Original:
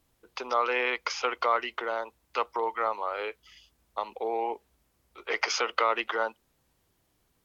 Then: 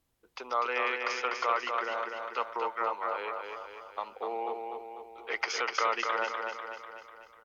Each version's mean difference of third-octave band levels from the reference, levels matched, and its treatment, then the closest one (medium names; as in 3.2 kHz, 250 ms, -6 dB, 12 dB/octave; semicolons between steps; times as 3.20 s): 4.5 dB: dynamic bell 1.5 kHz, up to +4 dB, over -39 dBFS, Q 0.74; on a send: feedback delay 247 ms, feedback 54%, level -4.5 dB; on the sum: trim -6.5 dB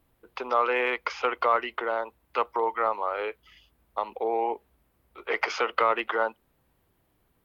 2.0 dB: in parallel at -6 dB: hard clipper -18 dBFS, distortion -17 dB; on the sum: peaking EQ 6.2 kHz -14 dB 1.4 oct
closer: second